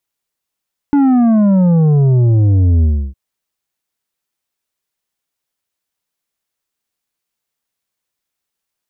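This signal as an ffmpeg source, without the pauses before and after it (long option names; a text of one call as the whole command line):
ffmpeg -f lavfi -i "aevalsrc='0.376*clip((2.21-t)/0.31,0,1)*tanh(2.37*sin(2*PI*290*2.21/log(65/290)*(exp(log(65/290)*t/2.21)-1)))/tanh(2.37)':duration=2.21:sample_rate=44100" out.wav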